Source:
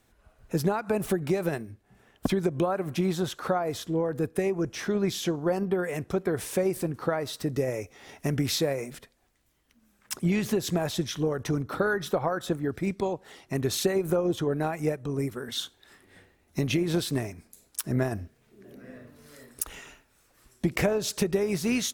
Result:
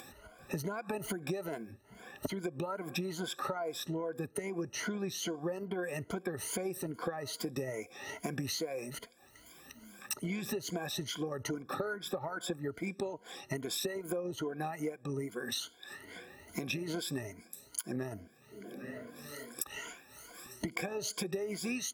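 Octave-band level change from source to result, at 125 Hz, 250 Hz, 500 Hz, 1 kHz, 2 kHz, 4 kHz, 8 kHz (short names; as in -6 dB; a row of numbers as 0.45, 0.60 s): -12.0, -10.5, -10.5, -8.0, -6.0, -5.5, -4.5 dB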